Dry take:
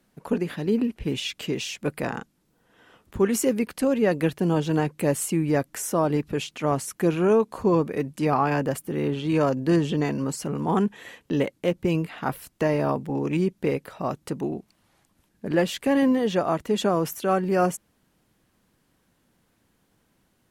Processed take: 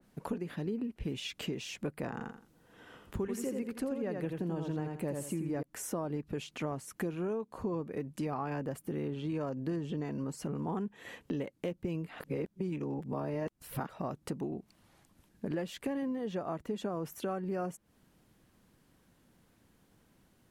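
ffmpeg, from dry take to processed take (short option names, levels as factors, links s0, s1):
-filter_complex "[0:a]asettb=1/sr,asplit=3[s0][s1][s2];[s0]atrim=end=2.124[s3];[s1]atrim=start=2.12:end=5.63,asetpts=PTS-STARTPTS,afade=t=in:d=0.004:c=qsin,afade=t=out:st=3.506:d=0.004:c=qsin,aecho=1:1:84|168|252:0.562|0.124|0.0272,atrim=end_sample=154791[s4];[s2]atrim=start=5.626[s5];[s3][s4]acrossfade=d=0.004:c1=hsin:c2=qsin[s6];[s6][s5]acrossfade=d=0.004:c1=qsin:c2=hsin,asplit=3[s7][s8][s9];[s7]atrim=end=12.202[s10];[s8]atrim=start=12.198:end=13.892,asetpts=PTS-STARTPTS,areverse[s11];[s9]atrim=start=13.888[s12];[s10][s11]acrossfade=d=0.004:c1=hsin:c2=hsin[s13];[s13][s12]acrossfade=d=0.004:c1=hsin:c2=hsin,lowshelf=f=460:g=3.5,acompressor=threshold=0.0224:ratio=5,adynamicequalizer=threshold=0.00251:dfrequency=2100:dqfactor=0.7:tfrequency=2100:tqfactor=0.7:attack=5:release=100:ratio=0.375:range=2.5:mode=cutabove:tftype=highshelf,volume=0.841"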